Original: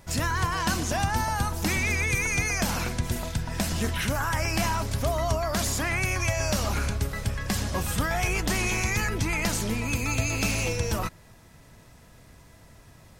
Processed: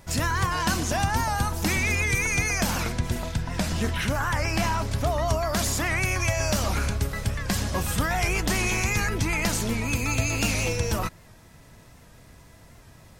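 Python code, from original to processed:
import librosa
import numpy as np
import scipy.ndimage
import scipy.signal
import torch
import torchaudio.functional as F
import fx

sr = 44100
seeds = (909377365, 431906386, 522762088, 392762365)

y = fx.high_shelf(x, sr, hz=7300.0, db=-7.5, at=(2.92, 5.28))
y = fx.record_warp(y, sr, rpm=78.0, depth_cents=100.0)
y = y * 10.0 ** (1.5 / 20.0)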